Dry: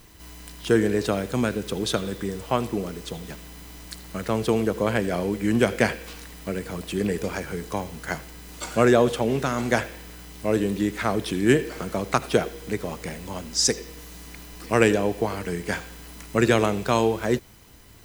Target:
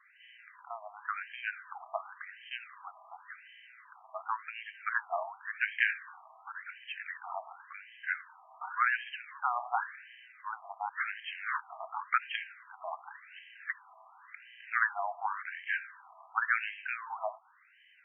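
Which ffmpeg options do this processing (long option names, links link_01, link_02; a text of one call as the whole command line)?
ffmpeg -i in.wav -filter_complex "[0:a]asettb=1/sr,asplit=3[link_01][link_02][link_03];[link_01]atrim=end=10.694[link_04];[link_02]atrim=start=10.69:end=11.83,asetpts=PTS-STARTPTS,afade=type=in:duration=0.004:curve=qsin,afade=type=out:start_time=1.136:duration=0.004:curve=qsin,aeval=exprs='0.0841*(abs(mod(val(0)/0.0841+3,4)-2)-1)':channel_layout=same[link_05];[link_03]atrim=start=11.826[link_06];[link_04][link_05]acrossfade=duration=0.004:curve1=hsin:curve2=qsin[link_07];[link_07][link_06]acrossfade=duration=0.004:curve1=qsin:curve2=hsin,highpass=170,lowpass=4100,afftfilt=real='re*between(b*sr/1024,880*pow(2300/880,0.5+0.5*sin(2*PI*0.91*pts/sr))/1.41,880*pow(2300/880,0.5+0.5*sin(2*PI*0.91*pts/sr))*1.41)':imag='im*between(b*sr/1024,880*pow(2300/880,0.5+0.5*sin(2*PI*0.91*pts/sr))/1.41,880*pow(2300/880,0.5+0.5*sin(2*PI*0.91*pts/sr))*1.41)':win_size=1024:overlap=0.75" out.wav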